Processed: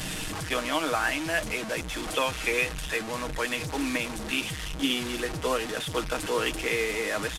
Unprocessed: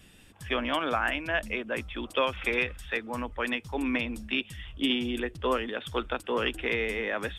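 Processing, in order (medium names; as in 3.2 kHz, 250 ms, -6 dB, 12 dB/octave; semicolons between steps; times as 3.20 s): one-bit delta coder 64 kbps, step -28 dBFS; comb 6.4 ms, depth 46%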